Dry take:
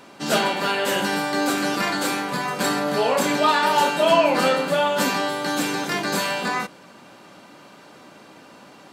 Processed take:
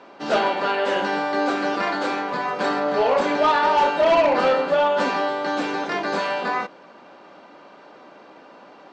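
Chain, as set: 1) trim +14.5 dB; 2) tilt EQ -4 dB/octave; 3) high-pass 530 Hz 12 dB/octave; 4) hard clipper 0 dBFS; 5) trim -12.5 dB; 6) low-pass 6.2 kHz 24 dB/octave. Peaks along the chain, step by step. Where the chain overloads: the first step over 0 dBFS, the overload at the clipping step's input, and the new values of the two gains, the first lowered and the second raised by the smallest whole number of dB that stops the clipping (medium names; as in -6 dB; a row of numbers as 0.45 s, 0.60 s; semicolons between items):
+9.5 dBFS, +11.5 dBFS, +8.5 dBFS, 0.0 dBFS, -12.5 dBFS, -11.5 dBFS; step 1, 8.5 dB; step 1 +5.5 dB, step 5 -3.5 dB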